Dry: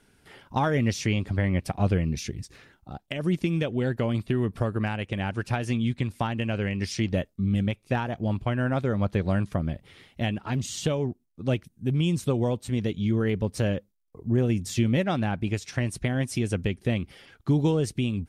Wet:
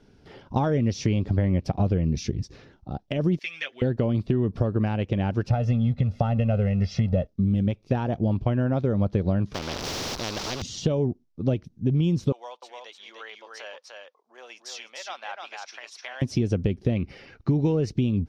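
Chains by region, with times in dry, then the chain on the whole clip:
0:03.39–0:03.82: high-pass with resonance 1,900 Hz, resonance Q 2.8 + comb filter 7.5 ms, depth 72%
0:05.50–0:07.27: mu-law and A-law mismatch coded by mu + low-pass filter 2,000 Hz 6 dB per octave + comb filter 1.5 ms, depth 90%
0:09.54–0:10.62: converter with a step at zero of −39 dBFS + every bin compressed towards the loudest bin 10 to 1
0:12.32–0:16.22: high-pass filter 910 Hz 24 dB per octave + amplitude tremolo 1.3 Hz, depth 44% + single-tap delay 300 ms −3.5 dB
0:16.96–0:17.91: parametric band 2,200 Hz +8 dB 1.2 octaves + notch filter 3,300 Hz, Q 5.3
whole clip: drawn EQ curve 520 Hz 0 dB, 1,900 Hz −11 dB, 5,700 Hz −5 dB, 8,500 Hz −24 dB; downward compressor, threshold −26 dBFS; level +7 dB

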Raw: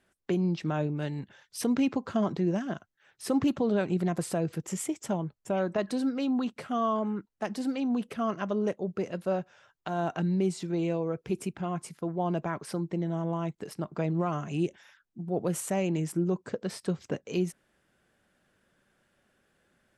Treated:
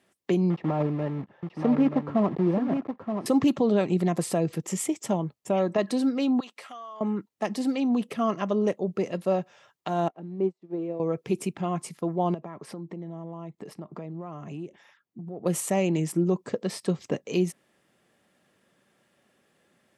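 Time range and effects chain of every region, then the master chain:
0:00.50–0:03.26: one scale factor per block 3 bits + low-pass filter 1,200 Hz + single-tap delay 926 ms −7 dB
0:06.40–0:07.01: Bessel high-pass filter 1,000 Hz + downward compressor 8 to 1, threshold −42 dBFS
0:10.08–0:11.00: converter with a step at zero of −43.5 dBFS + resonant band-pass 440 Hz, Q 0.84 + expander for the loud parts 2.5 to 1, over −49 dBFS
0:12.34–0:15.46: high-shelf EQ 2,500 Hz −10.5 dB + downward compressor 4 to 1, threshold −39 dBFS
whole clip: high-pass filter 130 Hz; notch filter 1,500 Hz, Q 5.9; level +4.5 dB

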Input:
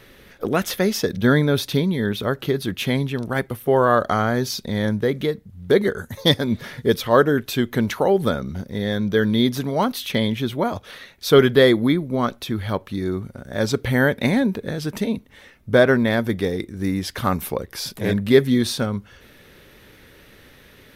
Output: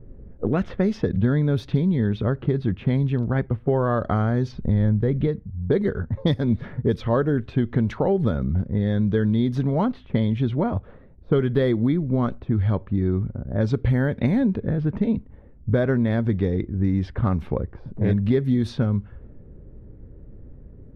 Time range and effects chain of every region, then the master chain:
0:04.52–0:05.27: low-pass filter 3,300 Hz 6 dB per octave + low-shelf EQ 84 Hz +11 dB
whole clip: RIAA equalisation playback; low-pass that shuts in the quiet parts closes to 460 Hz, open at −7.5 dBFS; downward compressor 6 to 1, threshold −13 dBFS; level −3.5 dB

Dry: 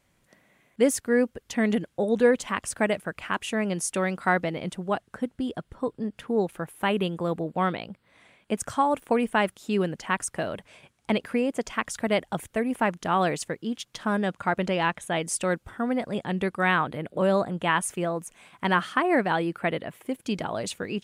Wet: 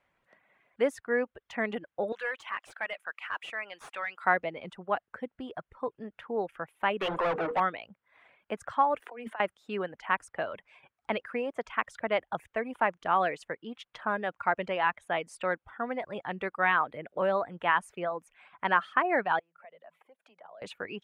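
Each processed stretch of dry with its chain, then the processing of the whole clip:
0:02.12–0:04.24: first-order pre-emphasis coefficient 0.97 + mid-hump overdrive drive 23 dB, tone 1,700 Hz, clips at −17 dBFS
0:07.01–0:07.60: high-pass filter 45 Hz + mains-hum notches 60/120/180/240/300/360/420/480/540 Hz + mid-hump overdrive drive 32 dB, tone 3,700 Hz, clips at −17 dBFS
0:09.00–0:09.40: Butterworth high-pass 220 Hz 96 dB per octave + compressor whose output falls as the input rises −30 dBFS, ratio −0.5
0:19.39–0:20.62: downward compressor, threshold −39 dBFS + Chebyshev high-pass with heavy ripple 160 Hz, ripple 9 dB + parametric band 230 Hz −11 dB 1.4 octaves
whole clip: three-way crossover with the lows and the highs turned down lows −13 dB, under 510 Hz, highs −22 dB, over 2,800 Hz; reverb reduction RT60 0.56 s

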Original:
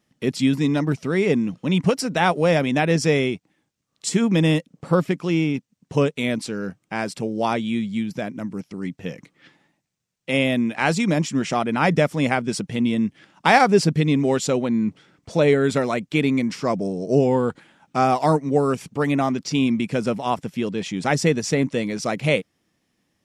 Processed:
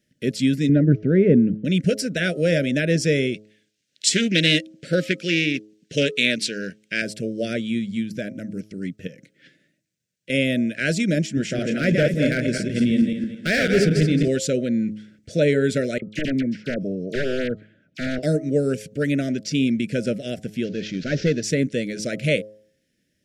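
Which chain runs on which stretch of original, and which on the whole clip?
0:00.69–0:01.65: low-pass filter 1,500 Hz + low-shelf EQ 450 Hz +8 dB
0:03.34–0:07.02: meter weighting curve D + highs frequency-modulated by the lows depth 0.16 ms
0:09.07–0:10.30: high-pass filter 82 Hz + downward compressor 2 to 1, threshold −44 dBFS
0:11.26–0:14.28: feedback delay that plays each chunk backwards 110 ms, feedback 53%, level −3.5 dB + high-shelf EQ 4,600 Hz −6 dB + hard clipping −10 dBFS
0:15.98–0:18.23: wrap-around overflow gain 12 dB + head-to-tape spacing loss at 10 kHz 28 dB + all-pass dispersion lows, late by 41 ms, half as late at 1,800 Hz
0:20.64–0:21.43: variable-slope delta modulation 32 kbit/s + hard clipping −8.5 dBFS
whole clip: elliptic band-stop filter 610–1,500 Hz, stop band 40 dB; hum removal 106.4 Hz, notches 12

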